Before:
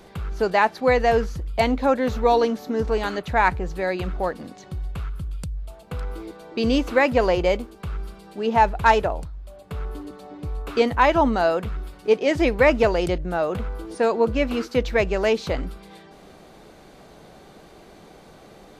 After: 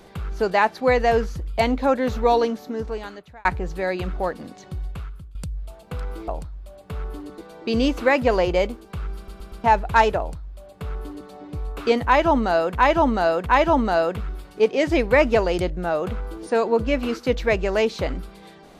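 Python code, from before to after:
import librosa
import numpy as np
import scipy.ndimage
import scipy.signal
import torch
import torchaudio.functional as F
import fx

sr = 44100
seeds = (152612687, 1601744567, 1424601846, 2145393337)

y = fx.edit(x, sr, fx.fade_out_span(start_s=2.33, length_s=1.12),
    fx.fade_out_to(start_s=4.84, length_s=0.51, floor_db=-17.5),
    fx.stutter_over(start_s=8.06, slice_s=0.12, count=4),
    fx.duplicate(start_s=9.09, length_s=1.1, to_s=6.28),
    fx.repeat(start_s=10.94, length_s=0.71, count=3), tone=tone)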